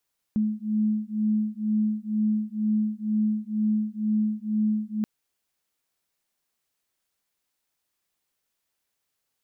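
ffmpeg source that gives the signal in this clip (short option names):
-f lavfi -i "aevalsrc='0.0531*(sin(2*PI*213*t)+sin(2*PI*215.1*t))':d=4.68:s=44100"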